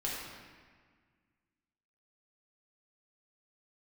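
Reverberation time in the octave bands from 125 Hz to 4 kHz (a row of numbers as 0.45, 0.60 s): 2.2, 2.2, 1.6, 1.7, 1.7, 1.2 s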